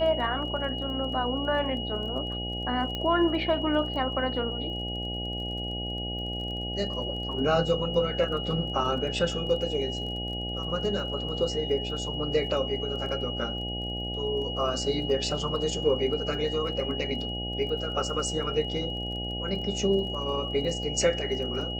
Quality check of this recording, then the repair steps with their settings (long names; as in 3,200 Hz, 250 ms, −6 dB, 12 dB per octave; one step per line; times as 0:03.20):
mains buzz 60 Hz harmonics 14 −35 dBFS
surface crackle 21 per second −38 dBFS
whistle 2,900 Hz −34 dBFS
0:02.95: click −19 dBFS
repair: click removal
hum removal 60 Hz, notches 14
notch filter 2,900 Hz, Q 30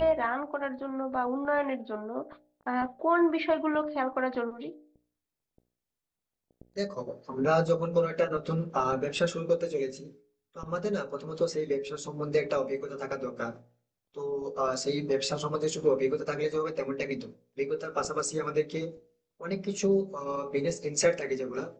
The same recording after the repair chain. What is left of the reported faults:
none of them is left